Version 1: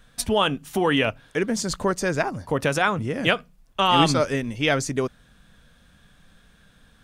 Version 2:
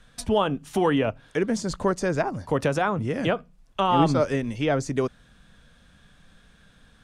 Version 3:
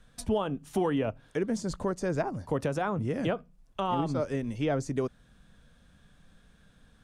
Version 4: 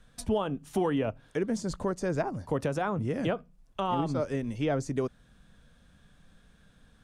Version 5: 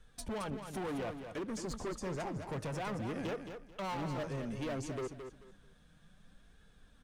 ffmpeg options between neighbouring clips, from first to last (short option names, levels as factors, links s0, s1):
-filter_complex "[0:a]lowpass=10000,acrossover=split=520|1200[s0][s1][s2];[s2]acompressor=threshold=0.02:ratio=6[s3];[s0][s1][s3]amix=inputs=3:normalize=0"
-af "equalizer=f=2700:w=0.36:g=-5,alimiter=limit=0.168:level=0:latency=1:release=356,volume=0.708"
-af anull
-filter_complex "[0:a]flanger=delay=2.3:depth=4.3:regen=41:speed=0.6:shape=sinusoidal,volume=63.1,asoftclip=hard,volume=0.0158,asplit=2[s0][s1];[s1]aecho=0:1:219|438|657:0.398|0.0955|0.0229[s2];[s0][s2]amix=inputs=2:normalize=0"